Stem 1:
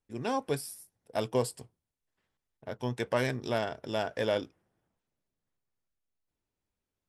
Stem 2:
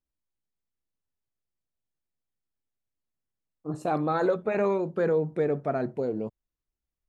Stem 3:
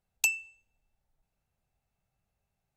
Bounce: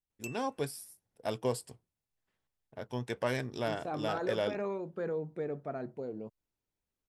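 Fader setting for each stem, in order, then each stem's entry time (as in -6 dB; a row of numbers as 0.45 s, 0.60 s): -3.5 dB, -10.5 dB, -18.5 dB; 0.10 s, 0.00 s, 0.00 s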